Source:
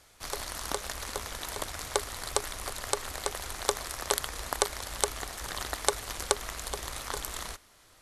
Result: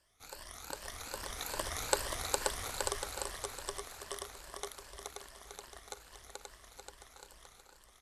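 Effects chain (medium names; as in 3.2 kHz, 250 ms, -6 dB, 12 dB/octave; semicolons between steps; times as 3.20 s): drifting ripple filter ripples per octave 1.3, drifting +2.5 Hz, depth 11 dB; Doppler pass-by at 1.85 s, 6 m/s, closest 2.7 m; bouncing-ball echo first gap 530 ms, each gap 0.65×, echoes 5; trim -3 dB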